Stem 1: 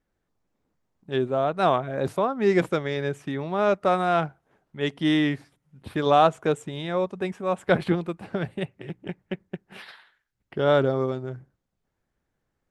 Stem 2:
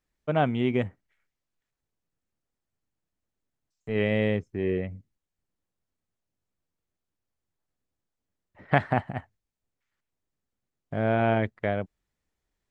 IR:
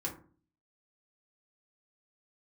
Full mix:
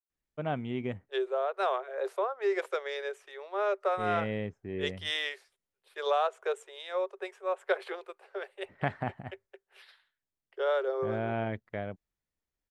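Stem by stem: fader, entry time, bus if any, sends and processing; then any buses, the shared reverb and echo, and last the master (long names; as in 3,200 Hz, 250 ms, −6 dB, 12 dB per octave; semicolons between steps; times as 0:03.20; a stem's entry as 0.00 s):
−3.0 dB, 0.00 s, no send, Chebyshev high-pass with heavy ripple 380 Hz, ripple 3 dB; downward compressor 4 to 1, threshold −24 dBFS, peak gain reduction 8 dB; multiband upward and downward expander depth 70%
−9.0 dB, 0.10 s, no send, no processing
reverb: not used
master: no processing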